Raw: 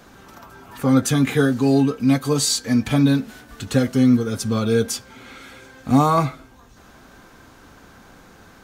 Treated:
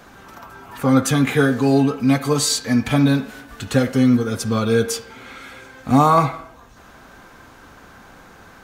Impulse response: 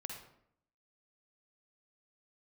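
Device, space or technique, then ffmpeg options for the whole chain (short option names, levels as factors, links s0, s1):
filtered reverb send: -filter_complex "[0:a]asplit=2[s0][s1];[s1]highpass=470,lowpass=3200[s2];[1:a]atrim=start_sample=2205[s3];[s2][s3]afir=irnorm=-1:irlink=0,volume=0.708[s4];[s0][s4]amix=inputs=2:normalize=0,volume=1.12"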